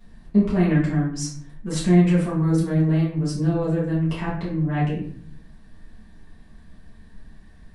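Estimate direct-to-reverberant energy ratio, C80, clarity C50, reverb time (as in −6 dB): −9.5 dB, 8.0 dB, 4.0 dB, 0.55 s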